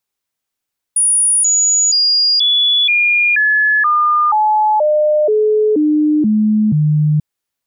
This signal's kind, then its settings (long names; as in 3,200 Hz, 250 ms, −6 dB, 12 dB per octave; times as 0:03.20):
stepped sweep 9,680 Hz down, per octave 2, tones 13, 0.48 s, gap 0.00 s −9.5 dBFS